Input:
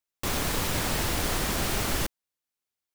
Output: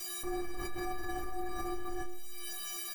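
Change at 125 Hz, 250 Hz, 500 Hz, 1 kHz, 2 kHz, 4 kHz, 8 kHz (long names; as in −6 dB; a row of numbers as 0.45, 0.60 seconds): −18.5, −7.0, −7.0, −7.0, −12.0, −14.0, −11.5 decibels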